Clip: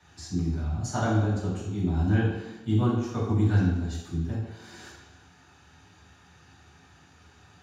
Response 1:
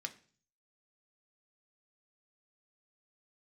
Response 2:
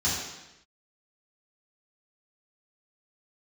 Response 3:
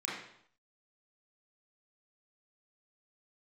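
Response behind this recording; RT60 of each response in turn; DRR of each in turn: 2; 0.45, 0.90, 0.65 s; 5.0, -9.5, -7.0 dB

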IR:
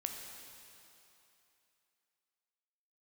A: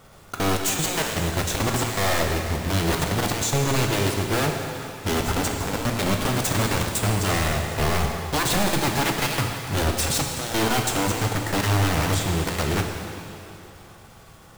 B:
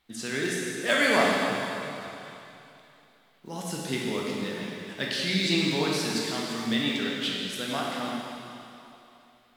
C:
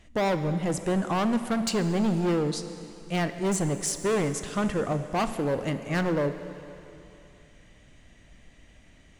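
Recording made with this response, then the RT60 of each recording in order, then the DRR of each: A; 2.9, 2.9, 3.0 s; 2.5, -4.0, 9.5 dB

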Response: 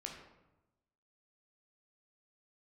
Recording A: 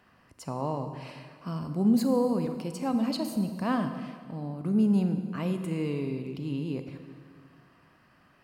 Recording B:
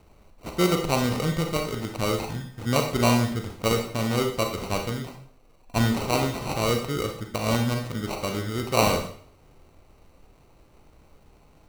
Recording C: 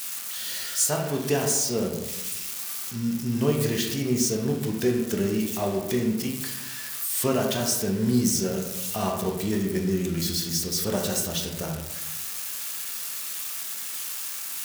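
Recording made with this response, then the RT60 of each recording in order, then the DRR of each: C; 1.9, 0.55, 1.0 s; 7.5, 3.0, 0.5 dB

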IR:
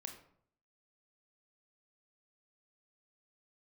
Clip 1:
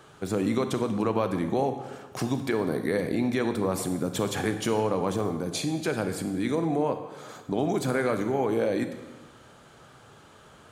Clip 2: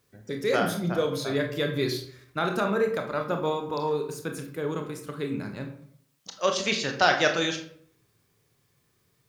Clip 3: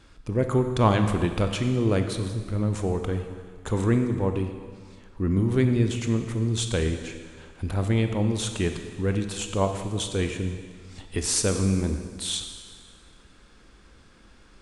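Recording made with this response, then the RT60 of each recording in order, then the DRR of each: 2; 1.2, 0.60, 1.8 s; 7.0, 3.5, 6.0 dB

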